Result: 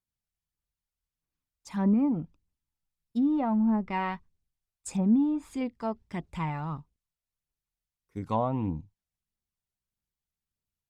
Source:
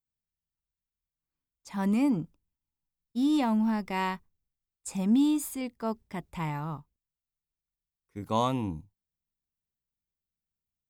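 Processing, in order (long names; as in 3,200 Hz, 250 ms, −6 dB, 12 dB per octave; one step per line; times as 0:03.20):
phase shifter 1.6 Hz, delay 1.6 ms, feedback 34%
treble cut that deepens with the level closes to 980 Hz, closed at −22.5 dBFS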